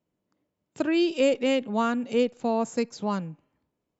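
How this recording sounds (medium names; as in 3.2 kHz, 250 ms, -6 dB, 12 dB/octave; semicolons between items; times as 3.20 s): noise floor -82 dBFS; spectral tilt -4.0 dB/octave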